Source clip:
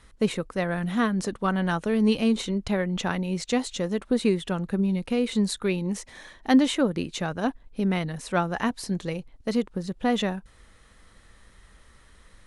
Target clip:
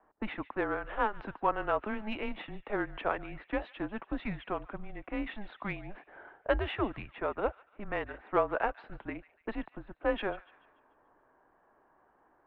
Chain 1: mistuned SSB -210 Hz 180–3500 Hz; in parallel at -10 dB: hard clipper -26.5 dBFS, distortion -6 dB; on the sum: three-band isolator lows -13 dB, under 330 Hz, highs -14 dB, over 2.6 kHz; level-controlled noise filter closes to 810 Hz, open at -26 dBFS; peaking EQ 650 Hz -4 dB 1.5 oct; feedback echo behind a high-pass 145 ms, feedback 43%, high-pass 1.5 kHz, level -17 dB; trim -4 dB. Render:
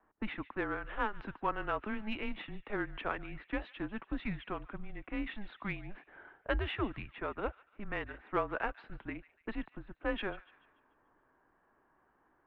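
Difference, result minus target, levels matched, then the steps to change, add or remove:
500 Hz band -2.5 dB
change: peaking EQ 650 Hz +4 dB 1.5 oct

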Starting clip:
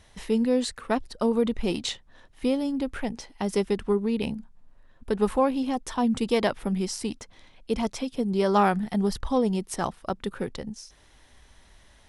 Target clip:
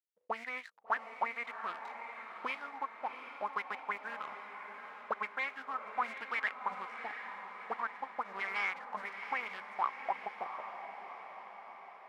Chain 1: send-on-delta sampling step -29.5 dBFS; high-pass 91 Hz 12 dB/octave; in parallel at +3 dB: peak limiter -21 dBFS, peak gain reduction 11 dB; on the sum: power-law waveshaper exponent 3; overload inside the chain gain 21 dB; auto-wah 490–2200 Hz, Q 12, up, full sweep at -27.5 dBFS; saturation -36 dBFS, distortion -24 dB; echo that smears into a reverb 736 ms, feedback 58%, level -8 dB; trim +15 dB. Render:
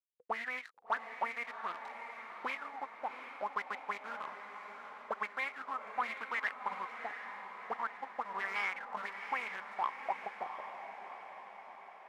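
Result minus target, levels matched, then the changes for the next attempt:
saturation: distortion +14 dB; send-on-delta sampling: distortion +6 dB
change: send-on-delta sampling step -36.5 dBFS; change: saturation -27.5 dBFS, distortion -37 dB

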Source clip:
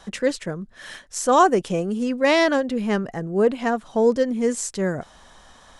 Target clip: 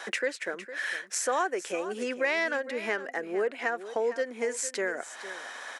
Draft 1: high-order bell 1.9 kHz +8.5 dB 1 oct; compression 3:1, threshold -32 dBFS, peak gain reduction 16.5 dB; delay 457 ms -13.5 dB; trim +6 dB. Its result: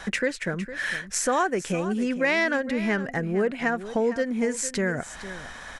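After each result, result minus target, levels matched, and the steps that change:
250 Hz band +8.0 dB; compression: peak gain reduction -4 dB
add first: high-pass 350 Hz 24 dB/octave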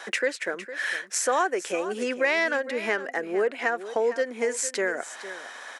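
compression: peak gain reduction -4 dB
change: compression 3:1, threshold -38 dBFS, peak gain reduction 20.5 dB

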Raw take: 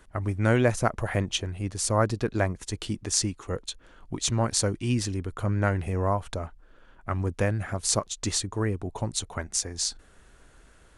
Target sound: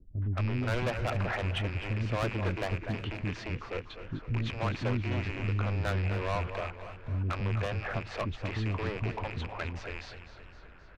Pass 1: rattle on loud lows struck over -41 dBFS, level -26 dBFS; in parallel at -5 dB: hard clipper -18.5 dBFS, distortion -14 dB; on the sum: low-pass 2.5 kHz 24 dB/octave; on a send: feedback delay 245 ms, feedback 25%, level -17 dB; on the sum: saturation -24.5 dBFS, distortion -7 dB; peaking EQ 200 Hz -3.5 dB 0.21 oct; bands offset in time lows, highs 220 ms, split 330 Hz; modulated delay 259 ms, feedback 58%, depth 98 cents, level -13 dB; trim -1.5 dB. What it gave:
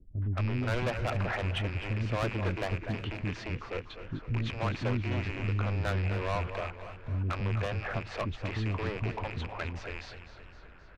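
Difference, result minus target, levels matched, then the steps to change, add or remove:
hard clipper: distortion +16 dB
change: hard clipper -11 dBFS, distortion -30 dB

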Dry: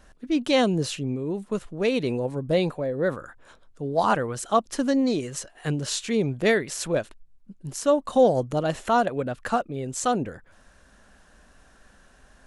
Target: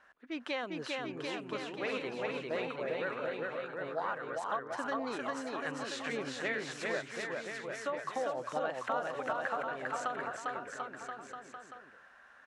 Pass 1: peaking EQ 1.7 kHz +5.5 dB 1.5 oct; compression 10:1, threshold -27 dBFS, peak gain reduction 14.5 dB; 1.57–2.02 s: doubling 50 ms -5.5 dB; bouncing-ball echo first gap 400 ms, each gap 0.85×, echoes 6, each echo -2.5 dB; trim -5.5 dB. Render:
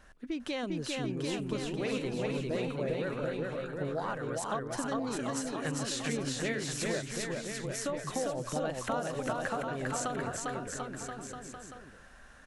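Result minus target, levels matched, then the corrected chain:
1 kHz band -3.5 dB
band-pass filter 1.3 kHz, Q 0.87; peaking EQ 1.7 kHz +5.5 dB 1.5 oct; compression 10:1, threshold -27 dBFS, peak gain reduction 13.5 dB; 1.57–2.02 s: doubling 50 ms -5.5 dB; bouncing-ball echo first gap 400 ms, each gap 0.85×, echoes 6, each echo -2.5 dB; trim -5.5 dB

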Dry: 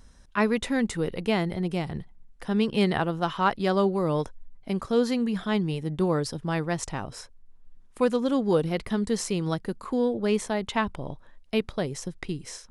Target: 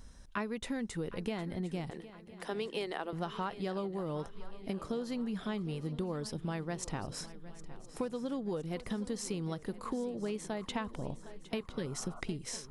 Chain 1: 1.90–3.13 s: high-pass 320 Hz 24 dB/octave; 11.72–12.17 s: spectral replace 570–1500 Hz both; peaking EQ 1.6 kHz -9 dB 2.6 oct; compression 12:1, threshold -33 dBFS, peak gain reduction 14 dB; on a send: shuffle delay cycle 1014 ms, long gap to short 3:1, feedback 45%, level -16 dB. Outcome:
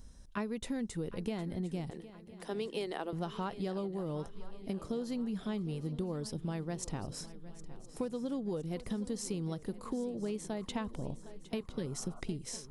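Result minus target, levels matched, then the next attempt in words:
2 kHz band -4.5 dB
1.90–3.13 s: high-pass 320 Hz 24 dB/octave; 11.72–12.17 s: spectral replace 570–1500 Hz both; peaking EQ 1.6 kHz -2 dB 2.6 oct; compression 12:1, threshold -33 dBFS, peak gain reduction 16 dB; on a send: shuffle delay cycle 1014 ms, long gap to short 3:1, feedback 45%, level -16 dB

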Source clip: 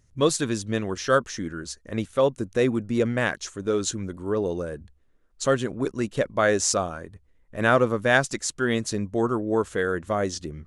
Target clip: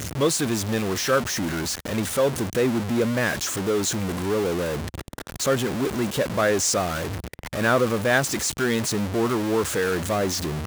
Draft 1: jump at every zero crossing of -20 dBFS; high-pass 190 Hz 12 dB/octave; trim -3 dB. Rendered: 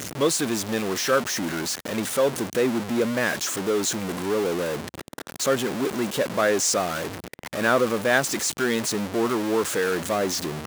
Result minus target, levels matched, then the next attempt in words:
125 Hz band -6.5 dB
jump at every zero crossing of -20 dBFS; high-pass 74 Hz 12 dB/octave; trim -3 dB

